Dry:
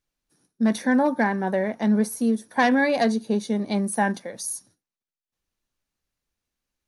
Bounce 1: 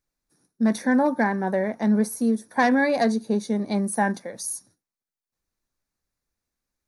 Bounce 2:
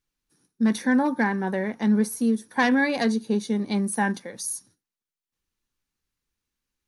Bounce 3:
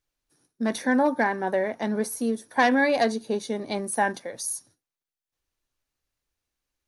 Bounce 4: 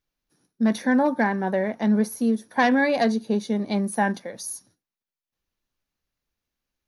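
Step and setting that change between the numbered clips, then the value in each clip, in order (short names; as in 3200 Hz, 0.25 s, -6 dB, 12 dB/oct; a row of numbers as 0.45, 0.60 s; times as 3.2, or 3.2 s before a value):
bell, frequency: 3000, 640, 200, 8300 Hz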